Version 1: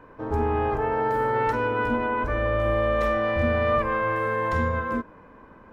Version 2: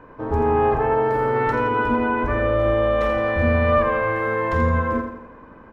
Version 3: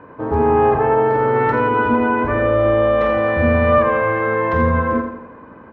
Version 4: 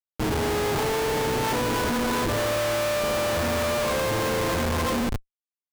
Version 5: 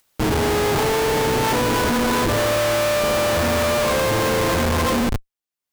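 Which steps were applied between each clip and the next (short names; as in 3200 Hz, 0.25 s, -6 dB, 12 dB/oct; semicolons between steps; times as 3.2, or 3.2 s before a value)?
high shelf 4300 Hz -8.5 dB; feedback echo 84 ms, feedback 48%, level -7.5 dB; gain +4 dB
HPF 87 Hz 12 dB/oct; air absorption 200 m; gain +5 dB
flutter echo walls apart 11 m, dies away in 0.33 s; Schmitt trigger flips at -24 dBFS; gain -8.5 dB
upward compressor, threshold -49 dBFS; gain +5.5 dB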